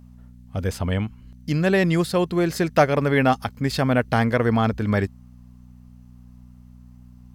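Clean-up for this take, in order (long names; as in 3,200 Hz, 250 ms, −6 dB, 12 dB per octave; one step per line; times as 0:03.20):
hum removal 61.2 Hz, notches 4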